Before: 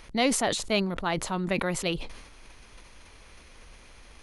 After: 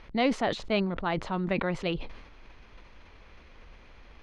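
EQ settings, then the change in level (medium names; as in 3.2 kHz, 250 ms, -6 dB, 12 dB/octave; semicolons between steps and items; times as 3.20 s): distance through air 230 m; 0.0 dB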